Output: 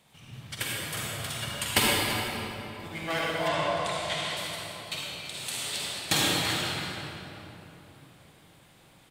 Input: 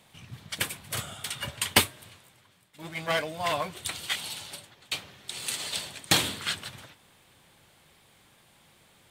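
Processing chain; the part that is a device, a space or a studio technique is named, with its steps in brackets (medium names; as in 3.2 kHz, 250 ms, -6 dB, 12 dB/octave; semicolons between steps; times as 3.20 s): cave (delay 335 ms -14.5 dB; reverberation RT60 3.4 s, pre-delay 42 ms, DRR -5 dB); 3.48–4.37 s: low-pass 7.5 kHz 12 dB/octave; trim -4.5 dB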